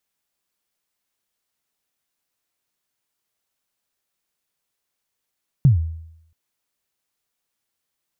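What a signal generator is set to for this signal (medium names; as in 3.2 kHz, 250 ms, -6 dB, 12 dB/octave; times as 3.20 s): kick drum length 0.68 s, from 150 Hz, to 81 Hz, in 128 ms, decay 0.77 s, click off, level -7 dB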